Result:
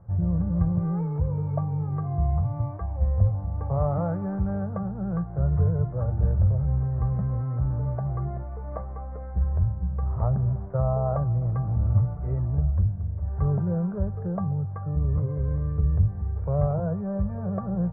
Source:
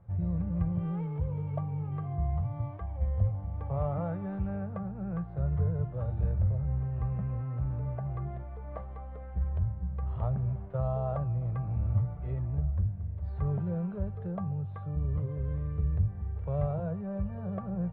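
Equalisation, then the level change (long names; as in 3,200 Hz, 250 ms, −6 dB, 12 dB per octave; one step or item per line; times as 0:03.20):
low-pass filter 1,600 Hz 24 dB per octave
+6.5 dB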